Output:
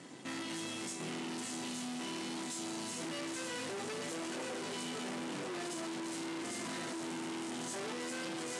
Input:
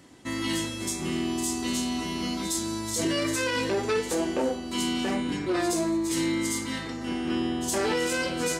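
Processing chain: chopper 2 Hz, depth 65%, duty 85%; on a send: diffused feedback echo 0.99 s, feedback 43%, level -6 dB; on the sum: tube stage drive 45 dB, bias 0.7; elliptic band-pass 140–9600 Hz, stop band 40 dB; gain +6 dB

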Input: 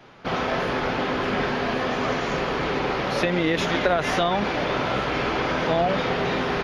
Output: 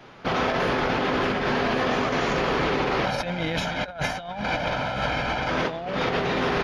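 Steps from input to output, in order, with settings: 3.05–5.5 comb 1.3 ms, depth 74%; negative-ratio compressor -25 dBFS, ratio -0.5

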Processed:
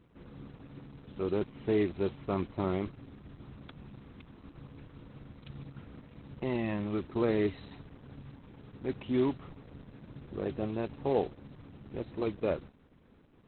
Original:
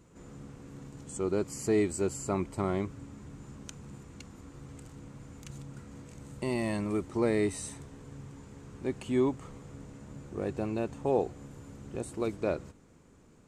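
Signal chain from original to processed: modulation noise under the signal 15 dB; Opus 8 kbps 48000 Hz

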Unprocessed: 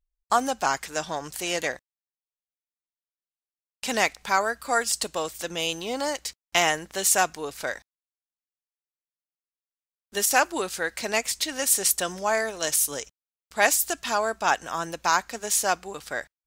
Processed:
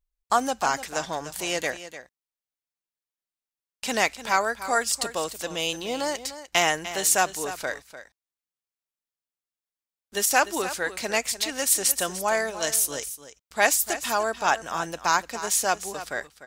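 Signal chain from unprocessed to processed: echo 0.298 s -13 dB

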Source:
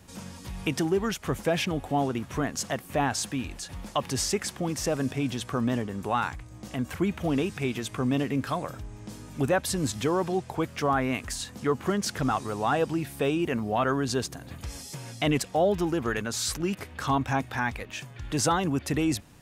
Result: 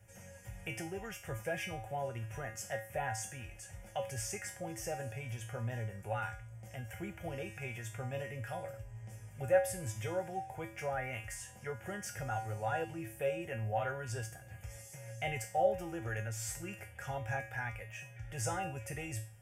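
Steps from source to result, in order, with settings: fixed phaser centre 1100 Hz, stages 6; resonator 110 Hz, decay 0.41 s, harmonics odd, mix 90%; gain +6 dB

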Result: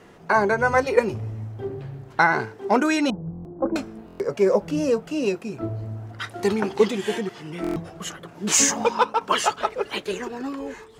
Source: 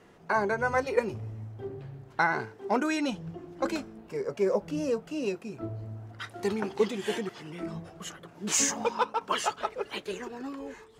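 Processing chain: 3.1–3.76 Bessel low-pass 700 Hz, order 6; 7.01–7.53 harmonic-percussive split percussive -7 dB; stuck buffer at 3.31/4.06/7.62, samples 1024, times 5; gain +7.5 dB

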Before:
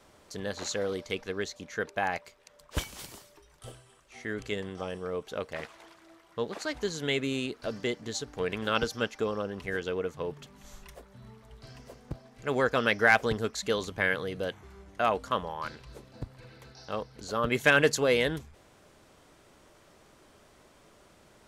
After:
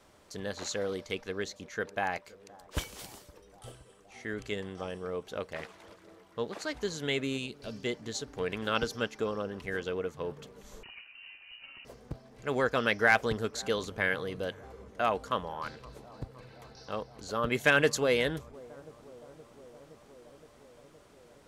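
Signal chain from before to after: 7.38–7.85 spectral gain 240–2200 Hz -7 dB; analogue delay 0.518 s, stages 4096, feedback 77%, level -22 dB; 10.83–11.85 inverted band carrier 2900 Hz; gain -2 dB

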